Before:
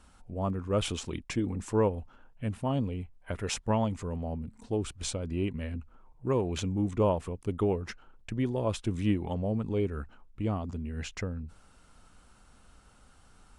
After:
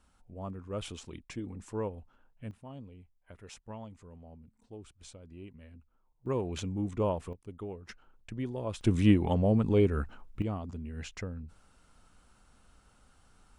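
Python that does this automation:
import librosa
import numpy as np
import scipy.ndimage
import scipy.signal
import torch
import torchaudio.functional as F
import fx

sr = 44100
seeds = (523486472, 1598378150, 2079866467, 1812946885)

y = fx.gain(x, sr, db=fx.steps((0.0, -9.0), (2.51, -16.5), (6.26, -4.0), (7.33, -13.0), (7.89, -6.0), (8.81, 5.0), (10.42, -4.0)))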